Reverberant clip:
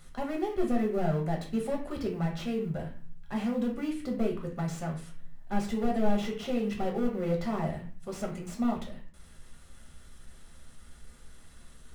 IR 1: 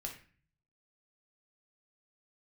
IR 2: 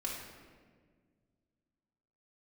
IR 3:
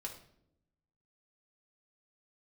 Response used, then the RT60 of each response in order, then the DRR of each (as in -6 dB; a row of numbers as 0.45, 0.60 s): 1; 0.40 s, 1.7 s, not exponential; 0.0, -4.0, 0.5 dB